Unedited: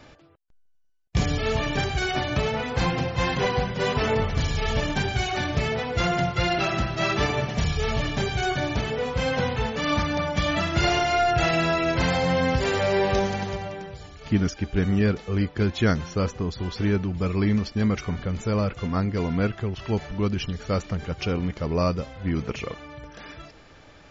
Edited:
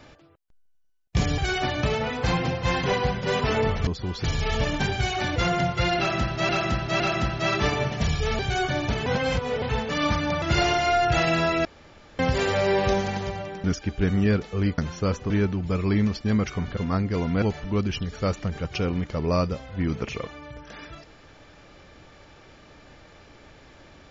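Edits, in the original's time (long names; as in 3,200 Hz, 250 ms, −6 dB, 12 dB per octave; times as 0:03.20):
0:01.38–0:01.91: remove
0:05.52–0:05.95: remove
0:06.57–0:07.08: repeat, 3 plays
0:07.96–0:08.26: remove
0:08.93–0:09.49: reverse
0:10.29–0:10.68: remove
0:11.91–0:12.45: fill with room tone
0:13.90–0:14.39: remove
0:15.53–0:15.92: remove
0:16.44–0:16.81: move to 0:04.40
0:18.28–0:18.80: remove
0:19.45–0:19.89: remove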